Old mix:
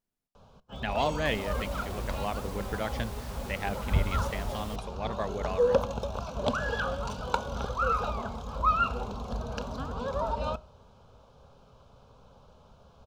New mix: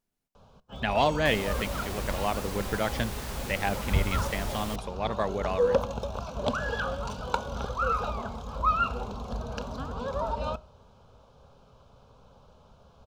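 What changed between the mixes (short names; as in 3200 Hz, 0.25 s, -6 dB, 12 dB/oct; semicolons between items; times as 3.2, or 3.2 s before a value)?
speech +4.5 dB; second sound +7.5 dB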